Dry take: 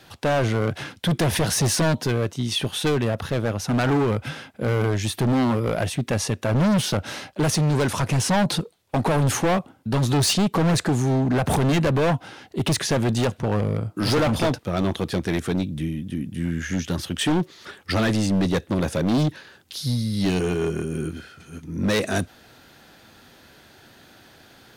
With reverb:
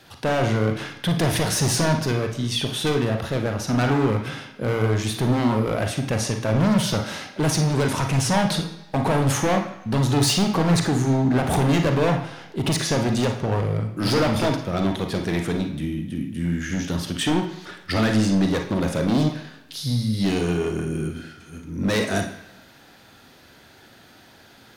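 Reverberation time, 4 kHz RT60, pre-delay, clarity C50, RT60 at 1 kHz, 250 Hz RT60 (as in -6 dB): 1.0 s, 0.95 s, 36 ms, 7.0 dB, 1.0 s, 0.95 s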